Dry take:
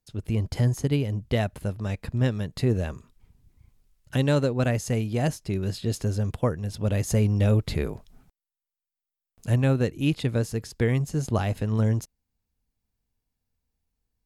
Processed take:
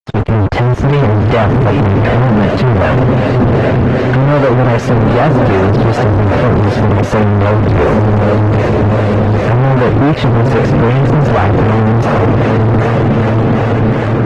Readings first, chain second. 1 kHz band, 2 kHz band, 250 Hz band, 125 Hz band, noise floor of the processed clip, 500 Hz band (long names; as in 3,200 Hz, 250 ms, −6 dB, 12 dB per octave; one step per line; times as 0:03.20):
+25.0 dB, +19.5 dB, +17.0 dB, +16.0 dB, −13 dBFS, +19.0 dB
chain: high-pass filter 51 Hz 24 dB per octave
feedback delay with all-pass diffusion 818 ms, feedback 65%, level −11.5 dB
flanger 0.42 Hz, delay 4.7 ms, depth 4.9 ms, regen −76%
downward compressor 5 to 1, threshold −28 dBFS, peak gain reduction 7.5 dB
two-band tremolo in antiphase 2.6 Hz, depth 70%, crossover 490 Hz
fuzz pedal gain 61 dB, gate −55 dBFS
low-pass filter 1,700 Hz 12 dB per octave
parametric band 94 Hz −2 dB 1.3 octaves
level +6.5 dB
Opus 16 kbit/s 48,000 Hz